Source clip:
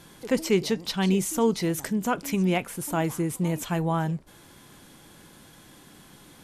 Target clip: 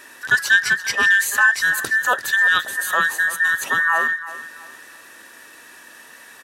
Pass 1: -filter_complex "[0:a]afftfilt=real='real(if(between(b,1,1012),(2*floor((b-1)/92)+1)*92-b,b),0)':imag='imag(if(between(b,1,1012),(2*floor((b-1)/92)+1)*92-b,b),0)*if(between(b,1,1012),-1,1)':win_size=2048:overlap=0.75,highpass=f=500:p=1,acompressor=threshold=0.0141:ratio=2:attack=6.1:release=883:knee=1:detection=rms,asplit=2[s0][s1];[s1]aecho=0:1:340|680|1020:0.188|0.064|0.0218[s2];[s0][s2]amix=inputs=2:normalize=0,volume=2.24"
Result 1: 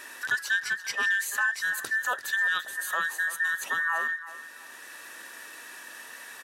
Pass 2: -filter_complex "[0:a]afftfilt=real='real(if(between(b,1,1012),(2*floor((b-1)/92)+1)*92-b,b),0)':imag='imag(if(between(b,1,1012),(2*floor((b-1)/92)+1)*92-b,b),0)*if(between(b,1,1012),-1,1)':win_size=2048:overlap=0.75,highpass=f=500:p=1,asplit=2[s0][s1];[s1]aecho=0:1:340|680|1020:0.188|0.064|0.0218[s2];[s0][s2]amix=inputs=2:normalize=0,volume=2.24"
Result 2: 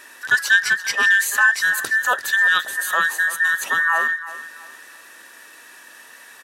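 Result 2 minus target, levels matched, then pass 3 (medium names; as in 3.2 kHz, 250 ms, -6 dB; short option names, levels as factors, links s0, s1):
250 Hz band -4.5 dB
-filter_complex "[0:a]afftfilt=real='real(if(between(b,1,1012),(2*floor((b-1)/92)+1)*92-b,b),0)':imag='imag(if(between(b,1,1012),(2*floor((b-1)/92)+1)*92-b,b),0)*if(between(b,1,1012),-1,1)':win_size=2048:overlap=0.75,highpass=f=180:p=1,asplit=2[s0][s1];[s1]aecho=0:1:340|680|1020:0.188|0.064|0.0218[s2];[s0][s2]amix=inputs=2:normalize=0,volume=2.24"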